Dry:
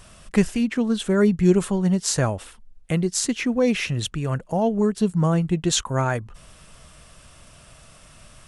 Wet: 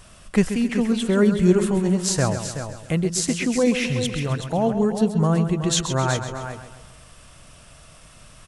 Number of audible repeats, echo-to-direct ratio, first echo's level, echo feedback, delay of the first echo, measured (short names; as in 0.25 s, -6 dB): 6, -6.0 dB, -10.0 dB, no steady repeat, 0.132 s